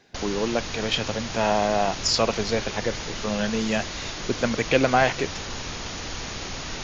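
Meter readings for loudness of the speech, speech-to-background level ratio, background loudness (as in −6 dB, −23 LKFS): −25.0 LKFS, 7.5 dB, −32.5 LKFS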